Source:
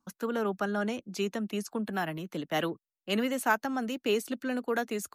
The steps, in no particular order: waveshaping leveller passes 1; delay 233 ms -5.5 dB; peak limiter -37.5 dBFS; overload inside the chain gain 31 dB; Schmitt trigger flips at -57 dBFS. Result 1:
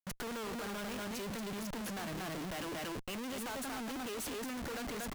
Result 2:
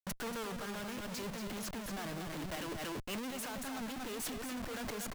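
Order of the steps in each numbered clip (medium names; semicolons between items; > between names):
waveshaping leveller > delay > overload inside the chain > peak limiter > Schmitt trigger; waveshaping leveller > overload inside the chain > Schmitt trigger > delay > peak limiter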